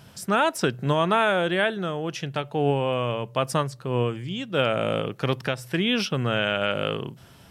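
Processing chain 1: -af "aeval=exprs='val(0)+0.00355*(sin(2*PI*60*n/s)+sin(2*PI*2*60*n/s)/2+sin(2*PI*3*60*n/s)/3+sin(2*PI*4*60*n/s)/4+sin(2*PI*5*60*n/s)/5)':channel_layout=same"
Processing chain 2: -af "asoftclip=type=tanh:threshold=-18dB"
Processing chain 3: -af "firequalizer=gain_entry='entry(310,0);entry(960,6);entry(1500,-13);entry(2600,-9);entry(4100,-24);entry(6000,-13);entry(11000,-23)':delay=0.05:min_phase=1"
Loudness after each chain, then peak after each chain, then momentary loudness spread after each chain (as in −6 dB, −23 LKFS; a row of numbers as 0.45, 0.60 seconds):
−25.0, −27.5, −24.5 LKFS; −10.0, −18.0, −8.5 dBFS; 8, 6, 8 LU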